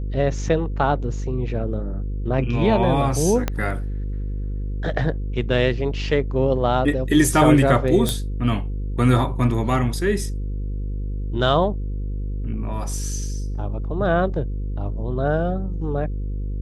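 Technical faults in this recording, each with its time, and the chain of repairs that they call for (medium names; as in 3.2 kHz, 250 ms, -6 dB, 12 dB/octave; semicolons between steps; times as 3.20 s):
buzz 50 Hz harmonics 10 -26 dBFS
3.48 s: pop -8 dBFS
8.09 s: pop -7 dBFS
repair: de-click; de-hum 50 Hz, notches 10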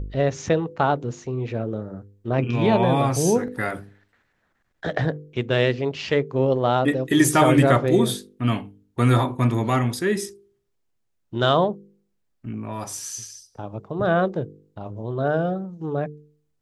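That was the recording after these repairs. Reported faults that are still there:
3.48 s: pop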